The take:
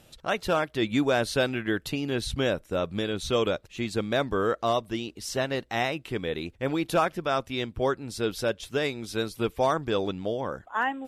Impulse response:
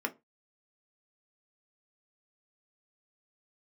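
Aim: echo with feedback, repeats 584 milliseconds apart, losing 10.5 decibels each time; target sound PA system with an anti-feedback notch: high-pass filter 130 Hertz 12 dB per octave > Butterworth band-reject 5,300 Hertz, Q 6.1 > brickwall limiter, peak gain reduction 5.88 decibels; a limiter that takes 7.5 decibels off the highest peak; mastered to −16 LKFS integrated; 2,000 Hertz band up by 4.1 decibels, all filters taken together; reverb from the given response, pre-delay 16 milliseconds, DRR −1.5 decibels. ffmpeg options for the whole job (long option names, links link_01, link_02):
-filter_complex "[0:a]equalizer=frequency=2000:width_type=o:gain=5.5,alimiter=limit=-18.5dB:level=0:latency=1,aecho=1:1:584|1168|1752:0.299|0.0896|0.0269,asplit=2[link_01][link_02];[1:a]atrim=start_sample=2205,adelay=16[link_03];[link_02][link_03]afir=irnorm=-1:irlink=0,volume=-3.5dB[link_04];[link_01][link_04]amix=inputs=2:normalize=0,highpass=130,asuperstop=centerf=5300:order=8:qfactor=6.1,volume=11.5dB,alimiter=limit=-5dB:level=0:latency=1"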